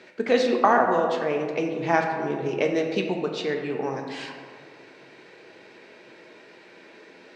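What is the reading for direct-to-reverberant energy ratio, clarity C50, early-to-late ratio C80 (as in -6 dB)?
2.0 dB, 4.5 dB, 6.5 dB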